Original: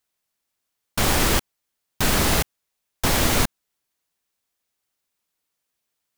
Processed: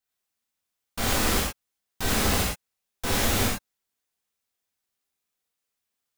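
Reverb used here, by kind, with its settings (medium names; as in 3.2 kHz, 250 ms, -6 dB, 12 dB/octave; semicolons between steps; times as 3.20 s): gated-style reverb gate 140 ms flat, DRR -5.5 dB; trim -10.5 dB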